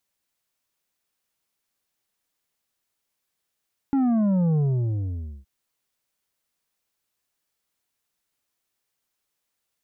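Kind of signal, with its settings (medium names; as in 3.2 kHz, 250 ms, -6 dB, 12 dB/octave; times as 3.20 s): sub drop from 280 Hz, over 1.52 s, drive 7 dB, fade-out 0.89 s, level -19 dB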